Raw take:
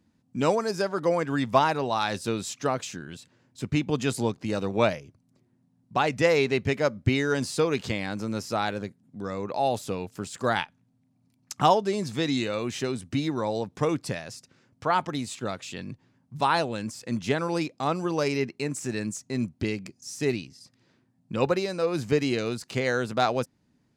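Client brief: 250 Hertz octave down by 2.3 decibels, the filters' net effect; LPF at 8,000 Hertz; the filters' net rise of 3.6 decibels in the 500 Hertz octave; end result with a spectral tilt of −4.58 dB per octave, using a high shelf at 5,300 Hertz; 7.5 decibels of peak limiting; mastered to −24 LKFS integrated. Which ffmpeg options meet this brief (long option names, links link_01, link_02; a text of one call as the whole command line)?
ffmpeg -i in.wav -af "lowpass=8000,equalizer=frequency=250:width_type=o:gain=-5,equalizer=frequency=500:width_type=o:gain=5.5,highshelf=frequency=5300:gain=7,volume=3dB,alimiter=limit=-9.5dB:level=0:latency=1" out.wav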